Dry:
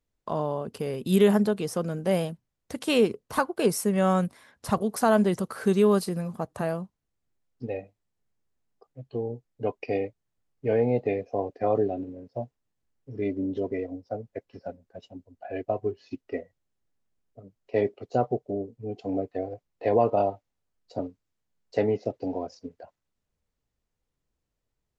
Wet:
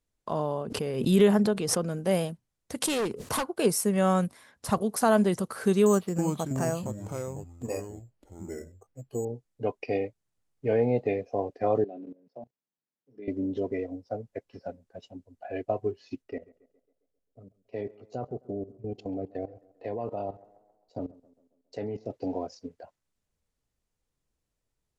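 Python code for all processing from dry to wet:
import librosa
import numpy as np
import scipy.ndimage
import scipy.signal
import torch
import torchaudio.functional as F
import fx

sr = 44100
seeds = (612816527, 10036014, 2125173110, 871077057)

y = fx.chain(x, sr, fx.high_shelf(hz=7100.0, db=-9.5),
    fx.pre_swell(db_per_s=60.0), at=(0.62, 1.89))
y = fx.chain(y, sr, fx.highpass(hz=51.0, slope=12),
    fx.clip_hard(threshold_db=-24.5),
    fx.pre_swell(db_per_s=52.0), at=(2.82, 3.47))
y = fx.chain(y, sr, fx.echo_pitch(ms=323, semitones=-4, count=3, db_per_echo=-6.0),
    fx.resample_bad(factor=6, down='filtered', up='hold'), at=(5.86, 9.25))
y = fx.chain(y, sr, fx.steep_highpass(hz=150.0, slope=36),
    fx.high_shelf(hz=6100.0, db=-9.5),
    fx.level_steps(step_db=20), at=(11.84, 13.28))
y = fx.chain(y, sr, fx.low_shelf(hz=350.0, db=5.0),
    fx.level_steps(step_db=16),
    fx.echo_tape(ms=135, feedback_pct=57, wet_db=-20.5, lp_hz=2100.0, drive_db=20.0, wow_cents=33), at=(16.22, 22.11))
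y = scipy.signal.sosfilt(scipy.signal.cheby1(2, 1.0, 10000.0, 'lowpass', fs=sr, output='sos'), y)
y = fx.high_shelf(y, sr, hz=9600.0, db=8.0)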